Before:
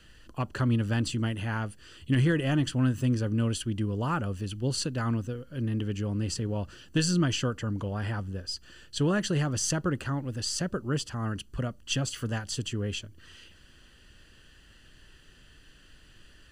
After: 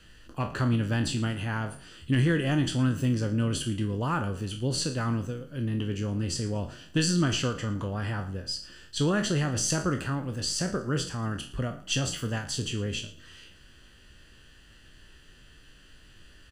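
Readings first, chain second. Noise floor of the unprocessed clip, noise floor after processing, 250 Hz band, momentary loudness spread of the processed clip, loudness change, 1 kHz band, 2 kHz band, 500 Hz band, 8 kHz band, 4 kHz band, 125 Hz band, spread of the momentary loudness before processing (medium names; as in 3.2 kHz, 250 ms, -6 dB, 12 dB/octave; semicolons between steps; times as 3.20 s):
-56 dBFS, -54 dBFS, +0.5 dB, 9 LU, +1.0 dB, +1.5 dB, +2.0 dB, +1.0 dB, +2.0 dB, +2.0 dB, +0.5 dB, 9 LU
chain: spectral sustain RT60 0.33 s; frequency-shifting echo 114 ms, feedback 31%, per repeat +34 Hz, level -18 dB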